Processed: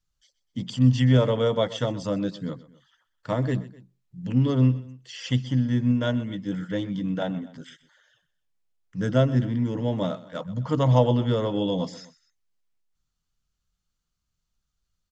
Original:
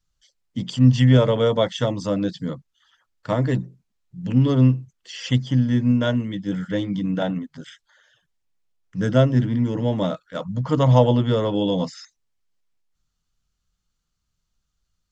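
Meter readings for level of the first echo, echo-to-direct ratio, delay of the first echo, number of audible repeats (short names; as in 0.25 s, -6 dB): -18.0 dB, -17.0 dB, 0.126 s, 2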